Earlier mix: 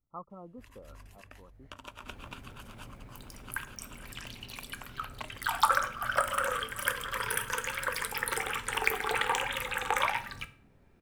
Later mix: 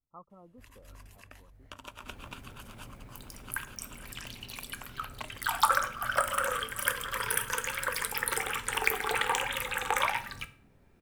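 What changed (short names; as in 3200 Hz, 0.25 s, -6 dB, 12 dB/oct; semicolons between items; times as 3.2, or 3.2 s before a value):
speech -7.0 dB; master: add high shelf 6500 Hz +5 dB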